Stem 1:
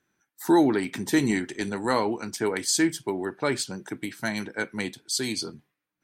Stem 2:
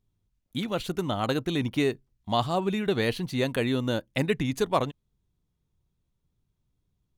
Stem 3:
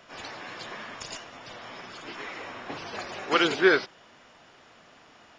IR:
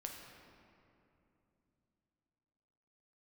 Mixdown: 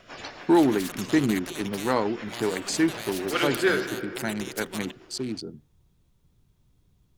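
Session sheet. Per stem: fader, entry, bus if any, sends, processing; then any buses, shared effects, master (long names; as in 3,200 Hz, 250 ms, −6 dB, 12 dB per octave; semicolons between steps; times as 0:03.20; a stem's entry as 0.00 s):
+1.0 dB, 0.00 s, no send, adaptive Wiener filter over 41 samples; high-shelf EQ 5,900 Hz −10.5 dB
−0.5 dB, 0.00 s, no send, every bin compressed towards the loudest bin 4 to 1
+1.5 dB, 0.00 s, send −3.5 dB, rotating-speaker cabinet horn 6.7 Hz; automatic ducking −9 dB, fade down 0.25 s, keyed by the first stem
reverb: on, RT60 2.9 s, pre-delay 7 ms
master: no processing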